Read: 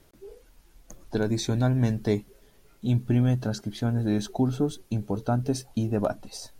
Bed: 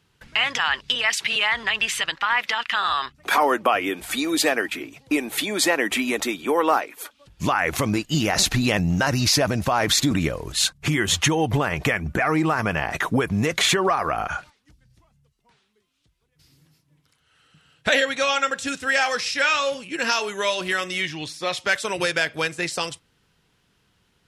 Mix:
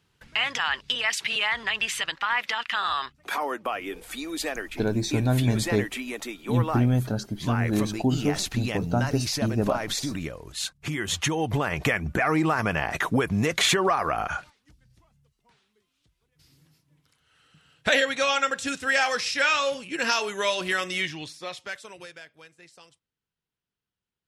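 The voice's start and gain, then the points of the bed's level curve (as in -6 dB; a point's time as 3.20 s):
3.65 s, +0.5 dB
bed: 3.03 s -4 dB
3.38 s -10 dB
10.64 s -10 dB
11.88 s -2 dB
21.03 s -2 dB
22.37 s -25.5 dB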